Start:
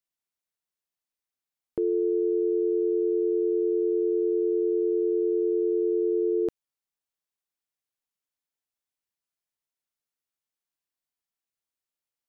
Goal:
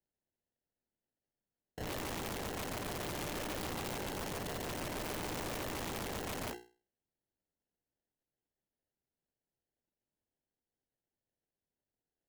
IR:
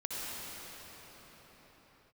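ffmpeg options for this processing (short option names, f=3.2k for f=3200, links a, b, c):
-filter_complex "[0:a]agate=range=-21dB:threshold=-22dB:ratio=16:detection=peak,equalizer=f=200:t=o:w=2.2:g=-2.5,bandreject=f=60:t=h:w=6,bandreject=f=120:t=h:w=6,bandreject=f=180:t=h:w=6,bandreject=f=240:t=h:w=6,bandreject=f=300:t=h:w=6,bandreject=f=360:t=h:w=6,bandreject=f=420:t=h:w=6,bandreject=f=480:t=h:w=6,acrusher=samples=37:mix=1:aa=0.000001,asplit=2[a][b];[1:a]atrim=start_sample=2205,atrim=end_sample=3087[c];[b][c]afir=irnorm=-1:irlink=0,volume=-15dB[d];[a][d]amix=inputs=2:normalize=0,aeval=exprs='(mod(316*val(0)+1,2)-1)/316':c=same,volume=15dB"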